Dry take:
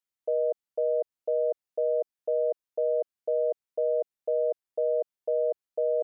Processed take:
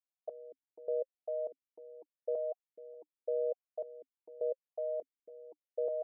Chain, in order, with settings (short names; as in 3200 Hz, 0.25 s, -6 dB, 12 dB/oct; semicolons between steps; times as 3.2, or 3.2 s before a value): vowel sequencer 3.4 Hz